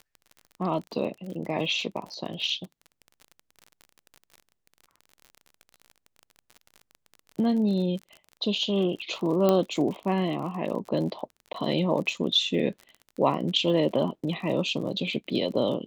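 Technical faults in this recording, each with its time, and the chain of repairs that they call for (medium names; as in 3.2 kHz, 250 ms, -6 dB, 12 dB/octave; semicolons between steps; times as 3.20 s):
crackle 38 per s -35 dBFS
2.06 s: dropout 4.3 ms
9.49 s: pop -10 dBFS
11.53–11.54 s: dropout 13 ms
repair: de-click; interpolate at 2.06 s, 4.3 ms; interpolate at 11.53 s, 13 ms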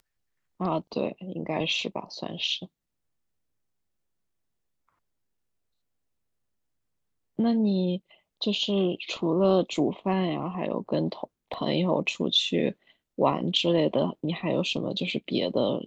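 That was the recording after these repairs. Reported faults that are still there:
9.49 s: pop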